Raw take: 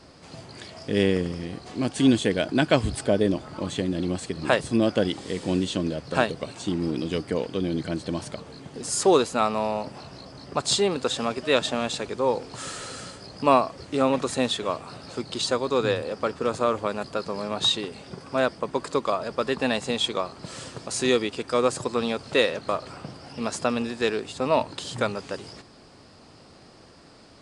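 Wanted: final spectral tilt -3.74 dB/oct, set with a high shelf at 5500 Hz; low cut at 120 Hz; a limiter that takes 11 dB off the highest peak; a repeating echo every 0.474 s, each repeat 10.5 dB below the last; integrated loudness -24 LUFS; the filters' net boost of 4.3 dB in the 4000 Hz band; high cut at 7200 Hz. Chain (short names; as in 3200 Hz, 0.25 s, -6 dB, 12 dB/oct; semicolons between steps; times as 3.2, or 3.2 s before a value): HPF 120 Hz; LPF 7200 Hz; bell 4000 Hz +3.5 dB; high shelf 5500 Hz +5 dB; limiter -14 dBFS; feedback echo 0.474 s, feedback 30%, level -10.5 dB; gain +3.5 dB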